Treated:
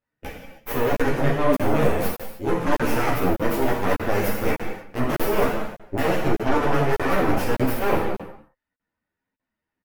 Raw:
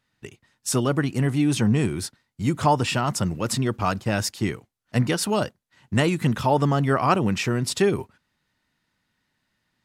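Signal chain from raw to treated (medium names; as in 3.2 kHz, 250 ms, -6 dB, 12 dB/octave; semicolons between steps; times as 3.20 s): reverb removal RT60 0.71 s; reverse; compression 5:1, threshold -29 dBFS, peak gain reduction 13.5 dB; reverse; Chebyshev shaper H 4 -6 dB, 5 -44 dB, 7 -16 dB, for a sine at -18 dBFS; in parallel at -6.5 dB: sine folder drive 14 dB, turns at -12.5 dBFS; on the sum: graphic EQ 500/4000/8000 Hz +5/-10/-12 dB; echo from a far wall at 32 m, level -15 dB; gated-style reverb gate 340 ms falling, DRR -2.5 dB; crackling interface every 0.60 s, samples 2048, zero, from 0.95 s; three-phase chorus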